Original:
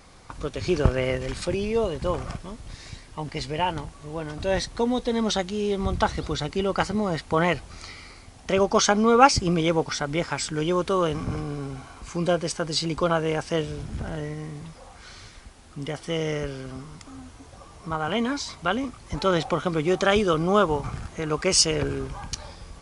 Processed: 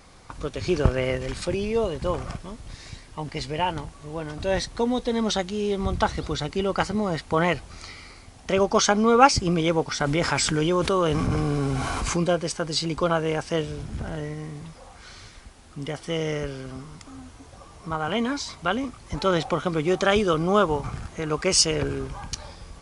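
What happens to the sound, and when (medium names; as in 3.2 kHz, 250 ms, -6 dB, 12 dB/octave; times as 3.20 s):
10.00–12.24 s: level flattener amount 70%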